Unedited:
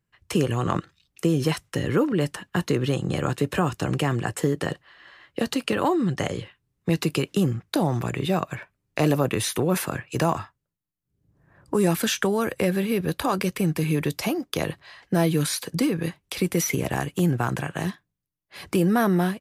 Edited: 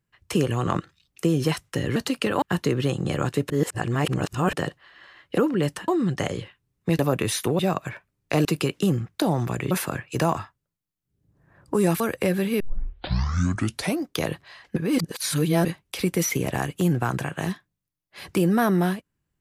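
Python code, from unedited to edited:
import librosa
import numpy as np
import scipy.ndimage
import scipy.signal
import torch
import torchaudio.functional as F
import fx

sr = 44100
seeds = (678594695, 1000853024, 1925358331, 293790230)

y = fx.edit(x, sr, fx.swap(start_s=1.96, length_s=0.5, other_s=5.42, other_length_s=0.46),
    fx.reverse_span(start_s=3.54, length_s=1.03),
    fx.swap(start_s=6.99, length_s=1.26, other_s=9.11, other_length_s=0.6),
    fx.cut(start_s=12.0, length_s=0.38),
    fx.tape_start(start_s=12.98, length_s=1.43),
    fx.reverse_span(start_s=15.14, length_s=0.89), tone=tone)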